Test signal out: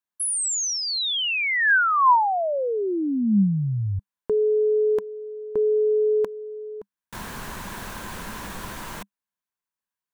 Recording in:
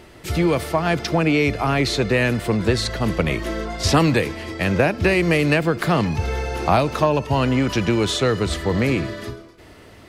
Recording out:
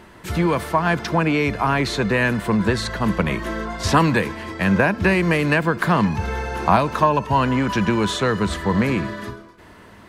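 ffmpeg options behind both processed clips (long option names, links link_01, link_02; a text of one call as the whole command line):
ffmpeg -i in.wav -af "equalizer=frequency=200:width_type=o:width=0.33:gain=9,equalizer=frequency=1000:width_type=o:width=0.33:gain=11,equalizer=frequency=1600:width_type=o:width=0.33:gain=8,equalizer=frequency=5000:width_type=o:width=0.33:gain=-3,volume=-2.5dB" out.wav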